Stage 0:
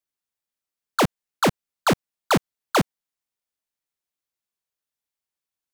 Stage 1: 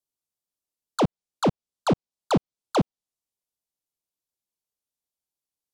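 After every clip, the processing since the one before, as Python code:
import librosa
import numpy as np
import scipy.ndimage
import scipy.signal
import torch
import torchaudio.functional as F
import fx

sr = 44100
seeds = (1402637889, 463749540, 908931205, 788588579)

y = fx.env_lowpass_down(x, sr, base_hz=2600.0, full_db=-17.5)
y = fx.peak_eq(y, sr, hz=1800.0, db=-14.5, octaves=1.2)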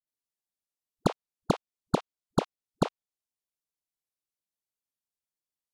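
y = fx.dispersion(x, sr, late='highs', ms=74.0, hz=320.0)
y = y * 10.0 ** (-5.5 / 20.0)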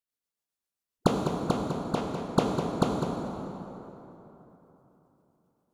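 y = x * (1.0 - 0.56 / 2.0 + 0.56 / 2.0 * np.cos(2.0 * np.pi * 7.5 * (np.arange(len(x)) / sr)))
y = y + 10.0 ** (-9.5 / 20.0) * np.pad(y, (int(203 * sr / 1000.0), 0))[:len(y)]
y = fx.rev_plate(y, sr, seeds[0], rt60_s=3.6, hf_ratio=0.55, predelay_ms=0, drr_db=0.5)
y = y * 10.0 ** (2.0 / 20.0)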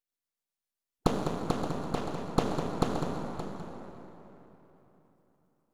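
y = np.where(x < 0.0, 10.0 ** (-12.0 / 20.0) * x, x)
y = y + 10.0 ** (-11.5 / 20.0) * np.pad(y, (int(573 * sr / 1000.0), 0))[:len(y)]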